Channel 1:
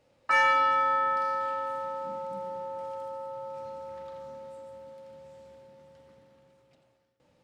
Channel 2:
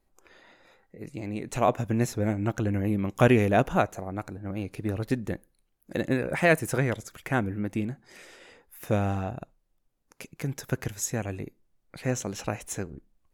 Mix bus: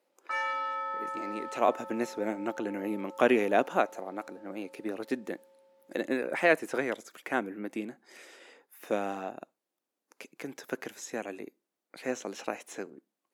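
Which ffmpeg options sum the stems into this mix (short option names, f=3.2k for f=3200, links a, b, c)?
-filter_complex "[0:a]volume=-9.5dB[a];[1:a]acrossover=split=5000[b][c];[c]acompressor=threshold=-48dB:ratio=4:attack=1:release=60[d];[b][d]amix=inputs=2:normalize=0,volume=-2dB[e];[a][e]amix=inputs=2:normalize=0,highpass=f=260:w=0.5412,highpass=f=260:w=1.3066"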